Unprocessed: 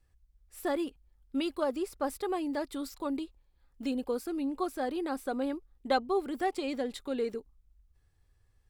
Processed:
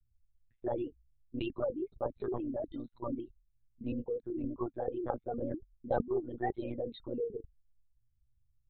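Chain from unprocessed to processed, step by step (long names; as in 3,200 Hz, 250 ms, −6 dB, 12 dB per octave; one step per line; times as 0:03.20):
spectral envelope exaggerated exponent 3
one-pitch LPC vocoder at 8 kHz 120 Hz
level −3.5 dB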